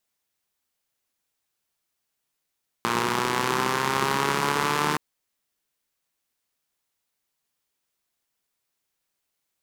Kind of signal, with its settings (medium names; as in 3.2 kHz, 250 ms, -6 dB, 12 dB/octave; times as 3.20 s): four-cylinder engine model, changing speed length 2.12 s, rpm 3500, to 4500, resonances 210/370/960 Hz